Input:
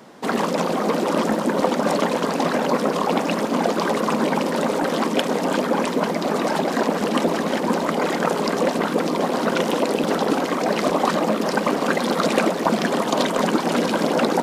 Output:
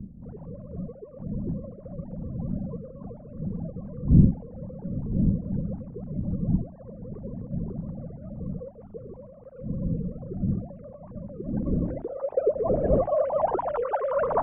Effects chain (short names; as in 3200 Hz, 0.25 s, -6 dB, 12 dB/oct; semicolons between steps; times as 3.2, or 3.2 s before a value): sine-wave speech; wind noise 210 Hz -24 dBFS; low-pass sweep 200 Hz -> 1000 Hz, 11.23–13.71; gain -8.5 dB